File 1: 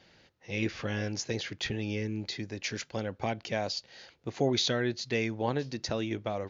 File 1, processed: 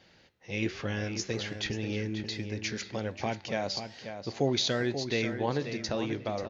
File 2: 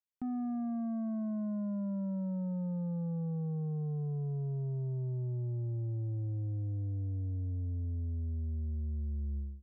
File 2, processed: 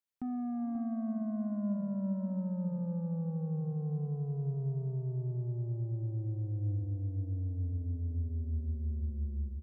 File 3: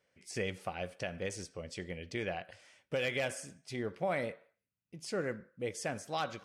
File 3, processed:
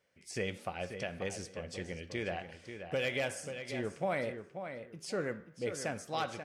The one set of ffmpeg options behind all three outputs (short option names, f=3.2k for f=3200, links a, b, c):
-filter_complex "[0:a]flanger=delay=9.7:depth=5.8:regen=89:speed=1.2:shape=sinusoidal,asplit=2[a][b];[b]adelay=536,lowpass=f=4k:p=1,volume=-8.5dB,asplit=2[c][d];[d]adelay=536,lowpass=f=4k:p=1,volume=0.22,asplit=2[e][f];[f]adelay=536,lowpass=f=4k:p=1,volume=0.22[g];[a][c][e][g]amix=inputs=4:normalize=0,volume=4.5dB"